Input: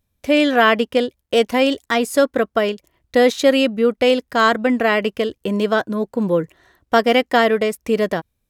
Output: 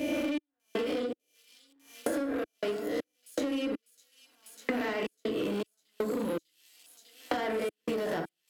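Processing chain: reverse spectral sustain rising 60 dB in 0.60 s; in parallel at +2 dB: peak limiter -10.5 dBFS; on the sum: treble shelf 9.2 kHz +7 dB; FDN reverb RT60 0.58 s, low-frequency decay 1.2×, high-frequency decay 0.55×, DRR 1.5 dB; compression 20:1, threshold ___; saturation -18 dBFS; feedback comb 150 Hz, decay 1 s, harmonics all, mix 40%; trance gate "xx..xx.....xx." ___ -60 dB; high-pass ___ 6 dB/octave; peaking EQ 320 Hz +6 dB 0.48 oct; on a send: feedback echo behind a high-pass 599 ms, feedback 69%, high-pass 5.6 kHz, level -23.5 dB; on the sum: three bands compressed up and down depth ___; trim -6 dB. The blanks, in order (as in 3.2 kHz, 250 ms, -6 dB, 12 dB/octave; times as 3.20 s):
-15 dBFS, 80 bpm, 58 Hz, 100%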